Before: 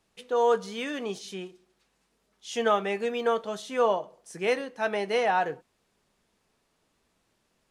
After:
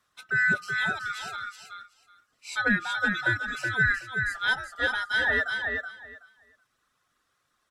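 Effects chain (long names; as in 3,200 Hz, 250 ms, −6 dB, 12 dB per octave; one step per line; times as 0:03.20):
neighbouring bands swapped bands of 1,000 Hz
reverb reduction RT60 1 s
repeating echo 375 ms, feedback 17%, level −5 dB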